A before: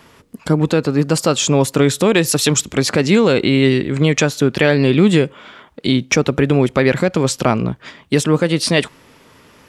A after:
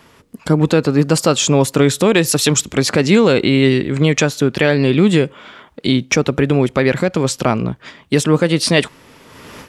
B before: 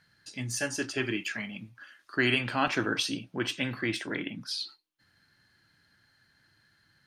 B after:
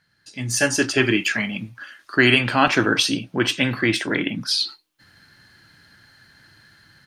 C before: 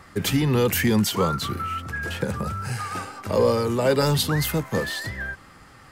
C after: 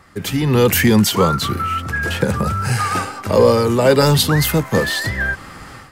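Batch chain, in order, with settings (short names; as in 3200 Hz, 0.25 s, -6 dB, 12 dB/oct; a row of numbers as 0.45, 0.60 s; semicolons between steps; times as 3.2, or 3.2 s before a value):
AGC gain up to 15 dB; gain -1 dB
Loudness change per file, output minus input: +0.5, +11.0, +7.5 LU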